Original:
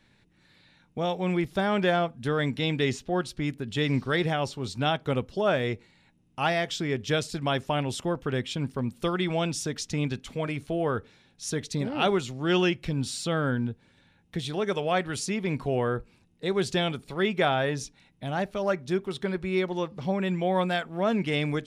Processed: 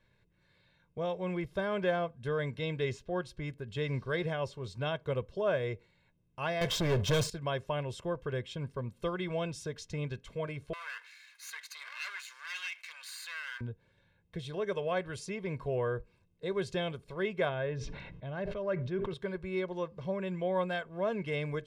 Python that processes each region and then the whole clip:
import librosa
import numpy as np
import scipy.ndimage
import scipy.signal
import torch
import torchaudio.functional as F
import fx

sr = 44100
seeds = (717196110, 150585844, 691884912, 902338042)

y = fx.chain(x, sr, fx.peak_eq(hz=850.0, db=-7.5, octaves=2.8),
    fx.leveller(passes=5), at=(6.61, 7.3))
y = fx.chain(y, sr, fx.lower_of_two(delay_ms=0.46),
    fx.highpass(hz=1400.0, slope=24),
    fx.env_flatten(amount_pct=50), at=(10.73, 13.61))
y = fx.chain(y, sr, fx.lowpass(hz=3000.0, slope=12),
    fx.dynamic_eq(hz=930.0, q=0.85, threshold_db=-40.0, ratio=4.0, max_db=-4),
    fx.sustainer(db_per_s=33.0), at=(17.49, 19.14))
y = fx.high_shelf(y, sr, hz=3300.0, db=-9.0)
y = y + 0.64 * np.pad(y, (int(1.9 * sr / 1000.0), 0))[:len(y)]
y = F.gain(torch.from_numpy(y), -7.5).numpy()